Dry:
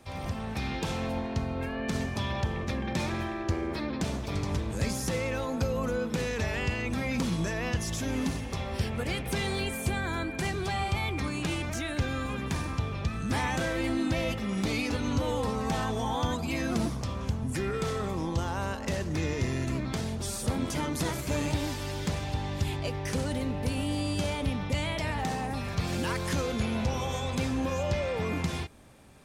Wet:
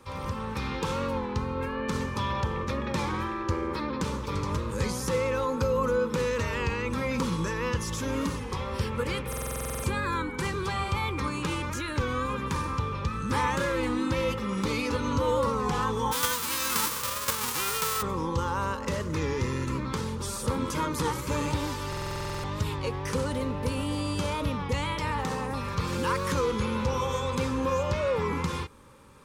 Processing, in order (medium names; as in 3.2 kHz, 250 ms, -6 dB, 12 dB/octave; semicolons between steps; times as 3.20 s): 16.11–18.01 s: formants flattened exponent 0.1; Butterworth band-stop 690 Hz, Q 1.9; high-order bell 800 Hz +9 dB; buffer glitch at 9.28/21.88 s, samples 2048, times 11; warped record 33 1/3 rpm, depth 100 cents